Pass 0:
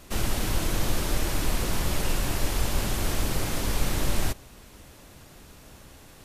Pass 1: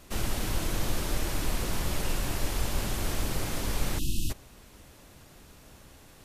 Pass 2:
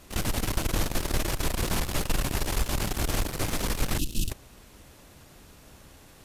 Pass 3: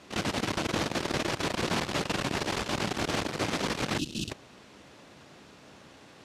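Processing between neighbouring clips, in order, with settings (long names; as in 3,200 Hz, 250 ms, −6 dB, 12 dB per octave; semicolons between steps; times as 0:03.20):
time-frequency box erased 0:03.99–0:04.30, 360–2,500 Hz; level −3.5 dB
harmonic generator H 2 −17 dB, 5 −20 dB, 6 −16 dB, 7 −26 dB, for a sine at −13.5 dBFS
band-pass filter 160–5,100 Hz; level +2.5 dB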